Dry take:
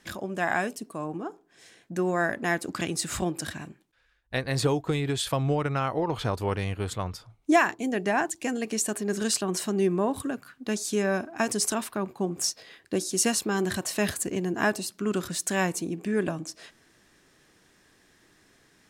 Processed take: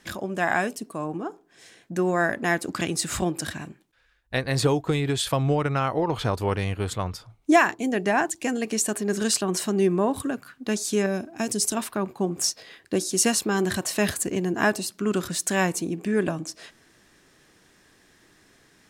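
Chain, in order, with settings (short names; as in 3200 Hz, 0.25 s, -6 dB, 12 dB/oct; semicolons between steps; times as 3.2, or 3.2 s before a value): 11.06–11.77 bell 1200 Hz -10.5 dB 2 oct; gain +3 dB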